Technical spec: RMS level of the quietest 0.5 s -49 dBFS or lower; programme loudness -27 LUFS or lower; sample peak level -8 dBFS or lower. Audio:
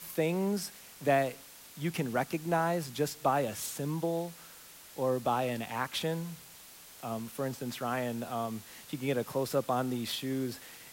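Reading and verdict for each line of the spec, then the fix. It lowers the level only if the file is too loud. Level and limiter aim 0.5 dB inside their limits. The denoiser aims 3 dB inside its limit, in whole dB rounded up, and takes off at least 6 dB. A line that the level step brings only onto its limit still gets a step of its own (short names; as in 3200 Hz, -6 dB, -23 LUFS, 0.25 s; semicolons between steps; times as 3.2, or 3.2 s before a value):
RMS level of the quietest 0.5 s -52 dBFS: OK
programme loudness -33.5 LUFS: OK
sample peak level -14.5 dBFS: OK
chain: none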